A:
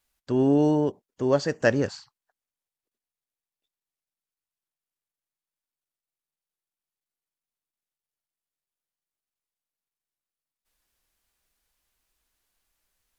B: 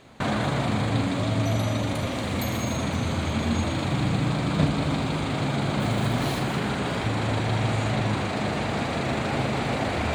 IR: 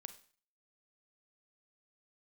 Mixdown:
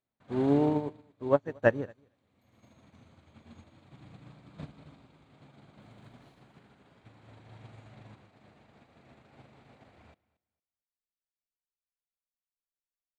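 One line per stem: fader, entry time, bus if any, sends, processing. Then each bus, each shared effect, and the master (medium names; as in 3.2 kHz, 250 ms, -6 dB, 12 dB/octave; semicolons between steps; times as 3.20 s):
-1.0 dB, 0.00 s, send -14.5 dB, echo send -11.5 dB, boxcar filter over 9 samples; peaking EQ 940 Hz +4 dB 0.6 oct
-7.0 dB, 0.00 s, no send, echo send -14 dB, auto duck -11 dB, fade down 1.40 s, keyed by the first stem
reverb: on, RT60 0.40 s, pre-delay 32 ms
echo: feedback delay 227 ms, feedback 21%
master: treble shelf 6 kHz -7.5 dB; upward expansion 2.5:1, over -38 dBFS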